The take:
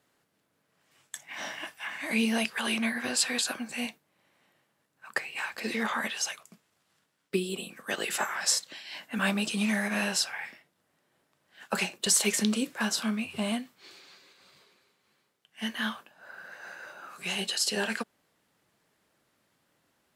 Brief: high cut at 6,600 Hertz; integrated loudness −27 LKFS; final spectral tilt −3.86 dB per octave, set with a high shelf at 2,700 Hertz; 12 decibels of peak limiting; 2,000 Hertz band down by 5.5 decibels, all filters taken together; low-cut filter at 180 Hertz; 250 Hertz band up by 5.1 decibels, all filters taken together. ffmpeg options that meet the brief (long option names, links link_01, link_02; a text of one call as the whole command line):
ffmpeg -i in.wav -af "highpass=180,lowpass=6600,equalizer=frequency=250:width_type=o:gain=8,equalizer=frequency=2000:width_type=o:gain=-5.5,highshelf=frequency=2700:gain=-4,volume=7dB,alimiter=limit=-16.5dB:level=0:latency=1" out.wav